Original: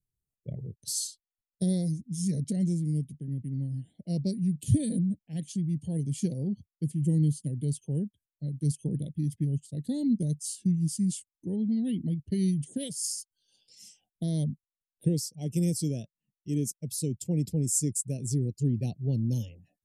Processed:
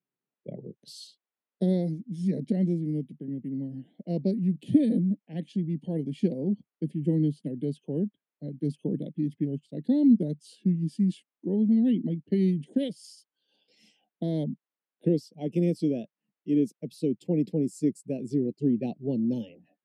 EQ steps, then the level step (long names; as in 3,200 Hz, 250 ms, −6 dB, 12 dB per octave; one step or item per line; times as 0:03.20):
high-pass filter 220 Hz 24 dB per octave
high-frequency loss of the air 430 metres
+9.0 dB